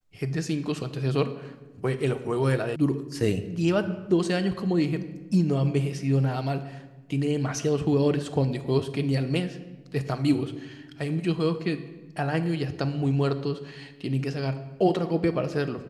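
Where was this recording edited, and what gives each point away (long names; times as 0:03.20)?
0:02.76: cut off before it has died away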